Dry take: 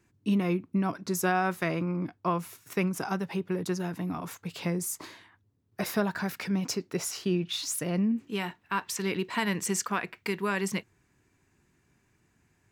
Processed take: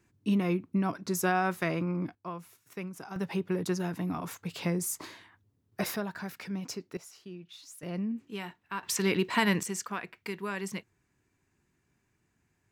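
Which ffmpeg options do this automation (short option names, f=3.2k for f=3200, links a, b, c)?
-af "asetnsamples=n=441:p=0,asendcmd='2.15 volume volume -11dB;3.16 volume volume 0dB;5.96 volume volume -7dB;6.97 volume volume -17dB;7.83 volume volume -6.5dB;8.83 volume volume 3dB;9.63 volume volume -6dB',volume=-1dB"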